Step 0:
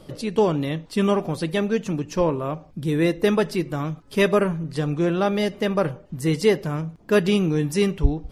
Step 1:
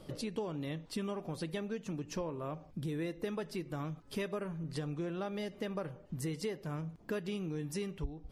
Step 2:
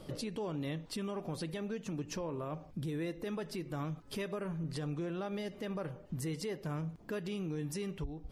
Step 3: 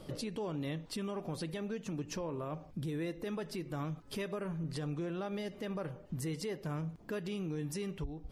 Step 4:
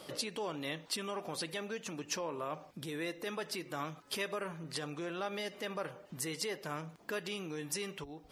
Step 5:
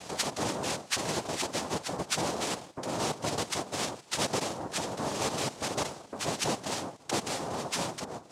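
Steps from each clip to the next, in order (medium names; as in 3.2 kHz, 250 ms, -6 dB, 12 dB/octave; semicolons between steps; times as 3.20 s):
compression 6:1, threshold -29 dBFS, peak gain reduction 17.5 dB; trim -6.5 dB
peak limiter -33 dBFS, peak gain reduction 7.5 dB; trim +2.5 dB
no audible change
high-pass 1 kHz 6 dB/octave; trim +7.5 dB
noise-vocoded speech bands 2; trim +7 dB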